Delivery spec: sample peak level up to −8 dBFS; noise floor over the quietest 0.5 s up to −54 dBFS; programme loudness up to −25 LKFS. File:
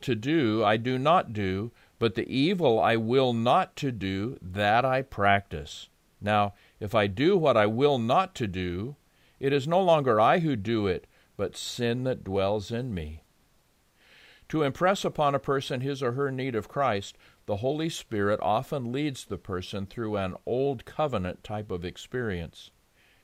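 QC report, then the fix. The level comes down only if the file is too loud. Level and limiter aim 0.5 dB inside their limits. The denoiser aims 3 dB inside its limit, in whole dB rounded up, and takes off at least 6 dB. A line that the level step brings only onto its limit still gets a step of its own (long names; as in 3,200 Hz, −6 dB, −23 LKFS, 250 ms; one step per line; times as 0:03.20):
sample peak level −8.5 dBFS: in spec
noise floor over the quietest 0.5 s −66 dBFS: in spec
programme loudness −27.0 LKFS: in spec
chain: no processing needed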